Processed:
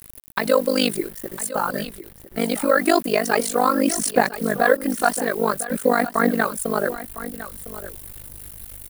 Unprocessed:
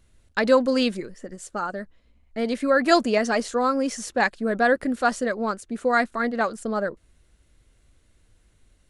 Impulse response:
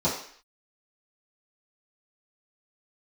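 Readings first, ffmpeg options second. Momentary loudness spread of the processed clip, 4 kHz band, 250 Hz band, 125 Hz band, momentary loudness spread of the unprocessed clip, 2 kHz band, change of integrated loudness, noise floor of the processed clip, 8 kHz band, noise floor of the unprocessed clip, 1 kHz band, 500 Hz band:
15 LU, +3.0 dB, +2.0 dB, n/a, 12 LU, +1.5 dB, +2.5 dB, -44 dBFS, +11.0 dB, -62 dBFS, +3.0 dB, +2.0 dB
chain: -filter_complex "[0:a]highshelf=f=5.5k:g=3,acrossover=split=130[a][b];[a]acompressor=threshold=-56dB:ratio=8[c];[c][b]amix=inputs=2:normalize=0,alimiter=limit=-12.5dB:level=0:latency=1:release=335,areverse,acompressor=mode=upward:threshold=-42dB:ratio=2.5,areverse,aphaser=in_gain=1:out_gain=1:delay=2.9:decay=0.41:speed=0.49:type=sinusoidal,tremolo=f=50:d=0.947,acrusher=bits=8:mix=0:aa=0.000001,aexciter=amount=2.6:drive=9.6:freq=9.1k,aecho=1:1:1006:0.2,volume=8dB"

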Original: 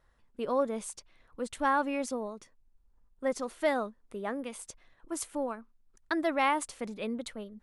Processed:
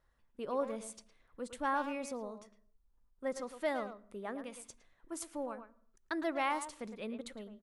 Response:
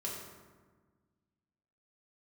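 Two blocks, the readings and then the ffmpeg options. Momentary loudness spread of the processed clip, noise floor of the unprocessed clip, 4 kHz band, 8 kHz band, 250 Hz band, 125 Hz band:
15 LU, -67 dBFS, -6.0 dB, -6.5 dB, -6.5 dB, n/a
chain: -filter_complex "[0:a]asplit=2[a][b];[b]adelay=110,highpass=300,lowpass=3.4k,asoftclip=type=hard:threshold=-24dB,volume=-9dB[c];[a][c]amix=inputs=2:normalize=0,asplit=2[d][e];[1:a]atrim=start_sample=2205,afade=t=out:st=0.36:d=0.01,atrim=end_sample=16317,lowshelf=f=410:g=7.5[f];[e][f]afir=irnorm=-1:irlink=0,volume=-23dB[g];[d][g]amix=inputs=2:normalize=0,volume=-7dB"

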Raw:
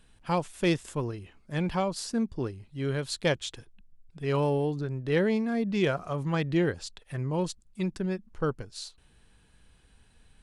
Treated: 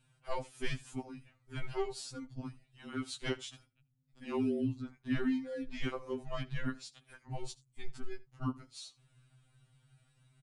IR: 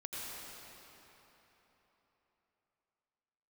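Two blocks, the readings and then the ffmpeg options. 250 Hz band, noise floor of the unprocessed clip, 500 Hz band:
-8.0 dB, -61 dBFS, -12.0 dB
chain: -af "afreqshift=-180,aecho=1:1:80:0.0891,afftfilt=real='re*2.45*eq(mod(b,6),0)':imag='im*2.45*eq(mod(b,6),0)':win_size=2048:overlap=0.75,volume=-6dB"

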